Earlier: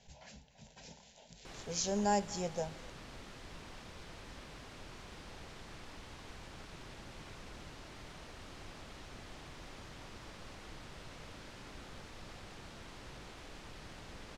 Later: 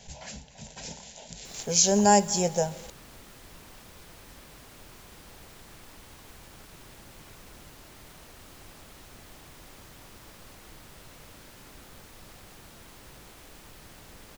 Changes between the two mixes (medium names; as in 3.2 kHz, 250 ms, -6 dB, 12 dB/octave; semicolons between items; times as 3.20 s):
speech +11.5 dB; master: remove low-pass 5.5 kHz 12 dB/octave